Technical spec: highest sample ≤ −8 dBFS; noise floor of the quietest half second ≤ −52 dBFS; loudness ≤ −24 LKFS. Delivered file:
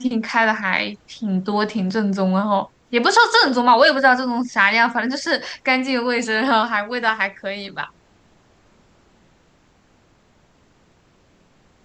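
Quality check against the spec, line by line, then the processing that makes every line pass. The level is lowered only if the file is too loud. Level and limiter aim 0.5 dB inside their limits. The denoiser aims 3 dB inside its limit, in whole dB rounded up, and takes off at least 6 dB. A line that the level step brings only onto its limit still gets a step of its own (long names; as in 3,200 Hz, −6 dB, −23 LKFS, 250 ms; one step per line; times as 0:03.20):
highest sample −3.0 dBFS: out of spec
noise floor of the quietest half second −57 dBFS: in spec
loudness −18.0 LKFS: out of spec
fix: level −6.5 dB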